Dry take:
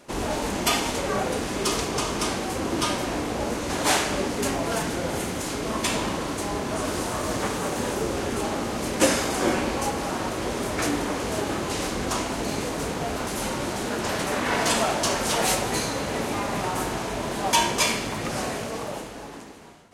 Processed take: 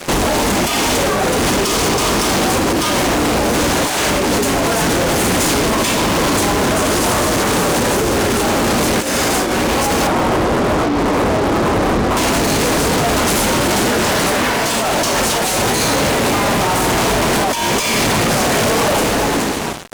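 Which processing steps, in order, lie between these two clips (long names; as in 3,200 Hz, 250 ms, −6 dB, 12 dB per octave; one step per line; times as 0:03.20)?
0:10.07–0:12.17: Butterworth low-pass 1,300 Hz
compressor whose output falls as the input rises −32 dBFS, ratio −1
fuzz pedal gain 40 dB, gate −45 dBFS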